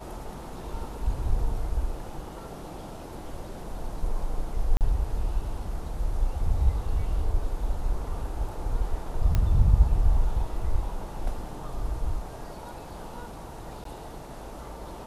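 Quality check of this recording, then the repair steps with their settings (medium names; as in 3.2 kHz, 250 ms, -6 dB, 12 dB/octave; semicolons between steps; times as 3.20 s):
4.77–4.81 s: dropout 38 ms
9.35 s: pop -13 dBFS
13.84–13.85 s: dropout 13 ms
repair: de-click; interpolate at 4.77 s, 38 ms; interpolate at 13.84 s, 13 ms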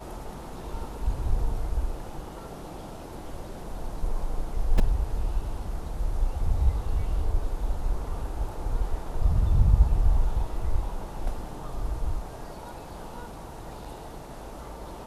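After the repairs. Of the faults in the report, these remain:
nothing left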